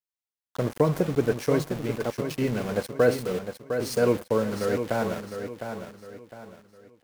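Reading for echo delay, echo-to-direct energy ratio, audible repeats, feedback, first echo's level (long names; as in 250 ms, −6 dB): 707 ms, −7.5 dB, 3, 35%, −8.0 dB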